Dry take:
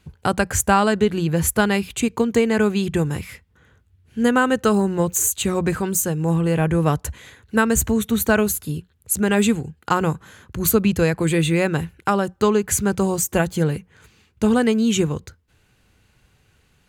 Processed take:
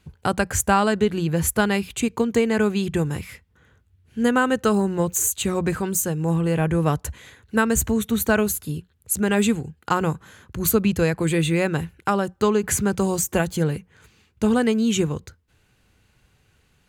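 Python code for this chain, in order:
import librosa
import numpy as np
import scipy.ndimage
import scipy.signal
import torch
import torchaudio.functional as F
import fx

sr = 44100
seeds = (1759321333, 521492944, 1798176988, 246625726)

y = fx.band_squash(x, sr, depth_pct=40, at=(12.63, 13.57))
y = y * 10.0 ** (-2.0 / 20.0)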